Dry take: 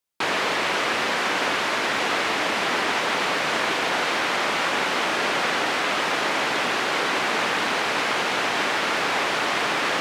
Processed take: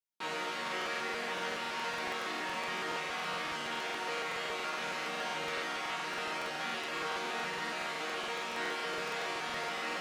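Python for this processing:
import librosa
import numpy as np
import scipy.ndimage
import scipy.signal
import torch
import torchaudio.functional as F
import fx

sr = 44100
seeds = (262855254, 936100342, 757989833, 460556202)

y = fx.resonator_bank(x, sr, root=51, chord='minor', decay_s=0.63)
y = fx.buffer_crackle(y, sr, first_s=0.63, period_s=0.14, block=2048, kind='repeat')
y = y * librosa.db_to_amplitude(5.5)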